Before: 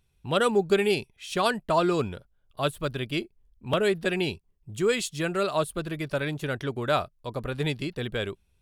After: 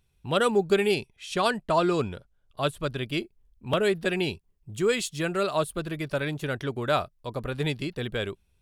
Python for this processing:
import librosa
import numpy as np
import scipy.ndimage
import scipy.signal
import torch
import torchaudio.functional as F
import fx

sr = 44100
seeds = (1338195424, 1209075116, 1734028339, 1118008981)

y = fx.lowpass(x, sr, hz=11000.0, slope=12, at=(0.94, 3.03))